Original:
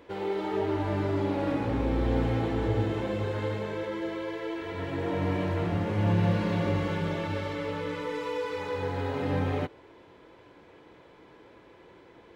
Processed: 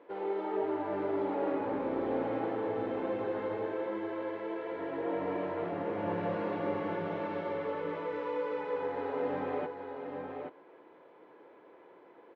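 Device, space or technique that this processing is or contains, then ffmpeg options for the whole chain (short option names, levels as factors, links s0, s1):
phone in a pocket: -af "highpass=380,lowpass=3700,highshelf=f=2100:g=-10.5,equalizer=f=4300:w=0.5:g=-4.5,aecho=1:1:826:0.501"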